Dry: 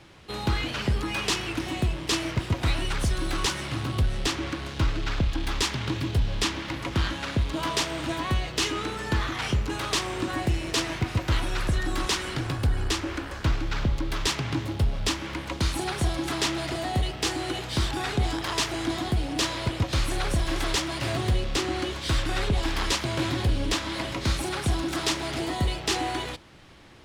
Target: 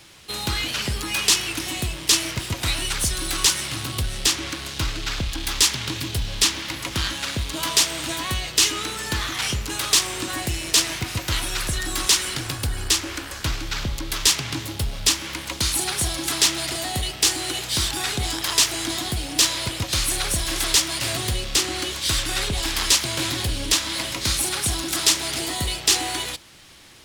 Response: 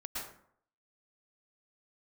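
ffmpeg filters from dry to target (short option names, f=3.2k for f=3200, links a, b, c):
-af "crystalizer=i=6:c=0,volume=-2.5dB"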